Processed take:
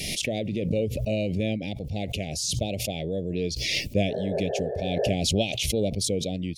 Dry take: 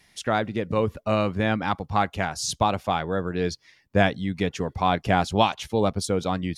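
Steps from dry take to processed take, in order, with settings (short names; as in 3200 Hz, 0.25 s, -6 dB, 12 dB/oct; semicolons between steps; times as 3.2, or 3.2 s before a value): painted sound noise, 4.08–5.13, 380–1800 Hz -24 dBFS; elliptic band-stop 610–2400 Hz, stop band 60 dB; notches 60/120 Hz; backwards sustainer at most 25 dB/s; gain -2.5 dB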